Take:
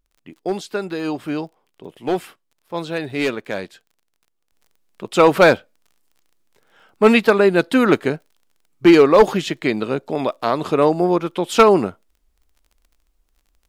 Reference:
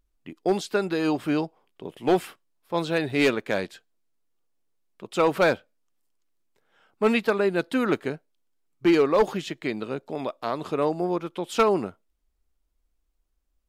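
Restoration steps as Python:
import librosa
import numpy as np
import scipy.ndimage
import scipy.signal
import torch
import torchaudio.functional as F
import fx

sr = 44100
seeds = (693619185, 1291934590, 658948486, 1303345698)

y = fx.fix_declick_ar(x, sr, threshold=6.5)
y = fx.gain(y, sr, db=fx.steps((0.0, 0.0), (4.52, -9.0)))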